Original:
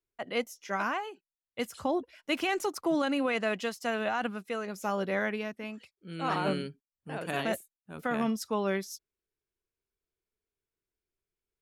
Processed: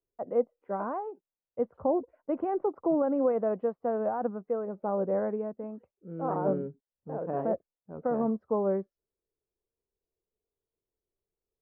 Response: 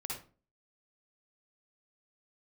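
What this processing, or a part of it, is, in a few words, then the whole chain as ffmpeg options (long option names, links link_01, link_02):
under water: -af "lowpass=frequency=1000:width=0.5412,lowpass=frequency=1000:width=1.3066,equalizer=frequency=500:width_type=o:width=0.58:gain=7"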